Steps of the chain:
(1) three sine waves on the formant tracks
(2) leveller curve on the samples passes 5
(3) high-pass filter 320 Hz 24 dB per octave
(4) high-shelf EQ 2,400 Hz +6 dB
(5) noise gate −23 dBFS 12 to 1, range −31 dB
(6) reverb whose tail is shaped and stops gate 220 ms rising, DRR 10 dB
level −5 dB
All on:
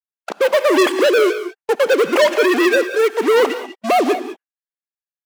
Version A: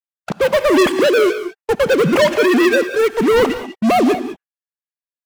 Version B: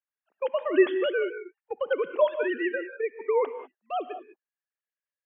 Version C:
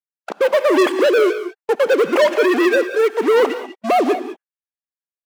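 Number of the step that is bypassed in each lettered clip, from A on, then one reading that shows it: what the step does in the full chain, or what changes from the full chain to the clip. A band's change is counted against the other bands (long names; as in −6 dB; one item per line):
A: 3, 250 Hz band +4.0 dB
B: 2, change in crest factor +4.0 dB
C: 4, 8 kHz band −4.5 dB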